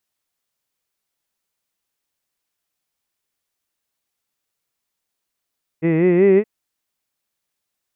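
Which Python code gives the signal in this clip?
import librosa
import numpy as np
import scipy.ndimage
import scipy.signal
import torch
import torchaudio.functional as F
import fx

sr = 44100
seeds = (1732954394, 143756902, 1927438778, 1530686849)

y = fx.vowel(sr, seeds[0], length_s=0.62, word='hid', hz=156.0, glide_st=5.0, vibrato_hz=5.3, vibrato_st=0.9)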